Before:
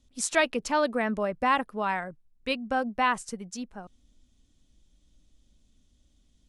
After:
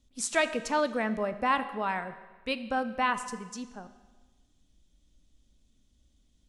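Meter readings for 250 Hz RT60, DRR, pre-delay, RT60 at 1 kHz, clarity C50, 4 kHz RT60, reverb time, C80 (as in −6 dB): 1.3 s, 11.0 dB, 13 ms, 1.3 s, 13.0 dB, 1.2 s, 1.3 s, 14.5 dB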